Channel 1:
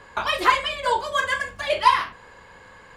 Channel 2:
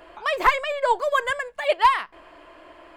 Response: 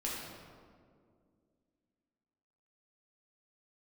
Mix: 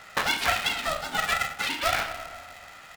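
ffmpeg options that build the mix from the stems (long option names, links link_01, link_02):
-filter_complex "[0:a]volume=2.5dB,asplit=2[link_01][link_02];[link_02]volume=-14.5dB[link_03];[1:a]adelay=0.4,volume=-12.5dB,asplit=2[link_04][link_05];[link_05]apad=whole_len=135249[link_06];[link_01][link_06]sidechaincompress=threshold=-36dB:ratio=8:attack=16:release=280[link_07];[2:a]atrim=start_sample=2205[link_08];[link_03][link_08]afir=irnorm=-1:irlink=0[link_09];[link_07][link_04][link_09]amix=inputs=3:normalize=0,highpass=1200,aeval=exprs='val(0)*sgn(sin(2*PI*320*n/s))':channel_layout=same"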